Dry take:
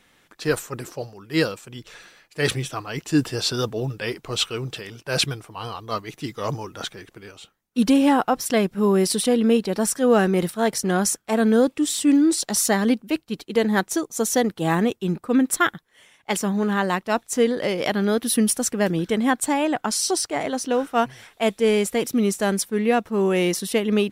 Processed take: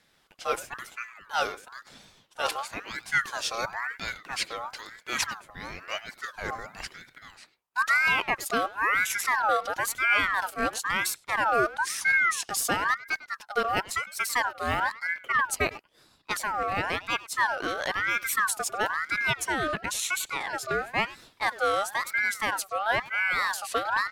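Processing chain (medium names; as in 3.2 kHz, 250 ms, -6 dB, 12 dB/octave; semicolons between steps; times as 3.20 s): speakerphone echo 100 ms, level -15 dB; wow and flutter 84 cents; ring modulator with a swept carrier 1.4 kHz, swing 35%, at 0.99 Hz; trim -4 dB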